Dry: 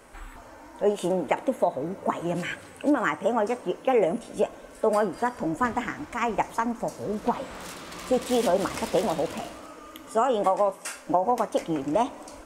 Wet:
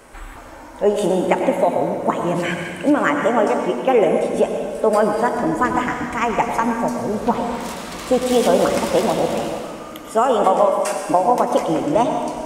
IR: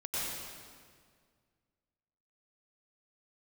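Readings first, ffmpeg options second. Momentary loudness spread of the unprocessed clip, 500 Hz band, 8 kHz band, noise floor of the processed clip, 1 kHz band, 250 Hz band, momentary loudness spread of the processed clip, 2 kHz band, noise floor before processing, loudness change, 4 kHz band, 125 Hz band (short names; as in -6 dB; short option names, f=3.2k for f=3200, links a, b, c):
14 LU, +8.0 dB, +8.0 dB, -37 dBFS, +8.0 dB, +8.0 dB, 8 LU, +8.0 dB, -47 dBFS, +8.0 dB, +8.0 dB, +8.5 dB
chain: -filter_complex "[0:a]asplit=2[a][b];[1:a]atrim=start_sample=2205[c];[b][c]afir=irnorm=-1:irlink=0,volume=-6.5dB[d];[a][d]amix=inputs=2:normalize=0,volume=4.5dB"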